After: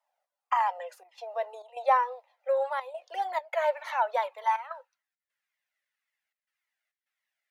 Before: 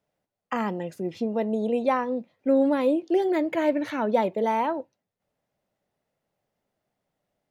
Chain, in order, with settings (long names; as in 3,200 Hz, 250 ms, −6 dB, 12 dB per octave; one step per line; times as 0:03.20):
elliptic high-pass filter 510 Hz, stop band 50 dB
high-pass filter sweep 820 Hz → 1,900 Hz, 0:03.89–0:05.38
gate pattern "xxxxxxx.xxx." 102 BPM −12 dB
flanger whose copies keep moving one way falling 1.8 Hz
level +2 dB